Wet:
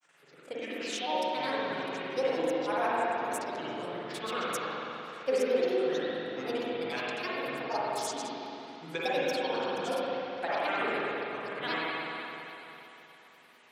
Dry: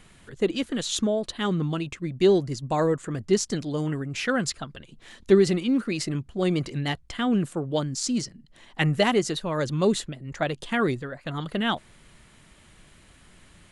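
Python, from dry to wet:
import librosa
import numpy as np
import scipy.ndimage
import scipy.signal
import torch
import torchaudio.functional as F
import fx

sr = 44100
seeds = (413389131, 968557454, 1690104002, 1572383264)

y = fx.granulator(x, sr, seeds[0], grain_ms=100.0, per_s=20.0, spray_ms=100.0, spread_st=7)
y = scipy.signal.sosfilt(scipy.signal.butter(2, 500.0, 'highpass', fs=sr, output='sos'), y)
y = fx.rev_spring(y, sr, rt60_s=3.4, pass_ms=(42, 55), chirp_ms=60, drr_db=-7.5)
y = F.gain(torch.from_numpy(y), -8.5).numpy()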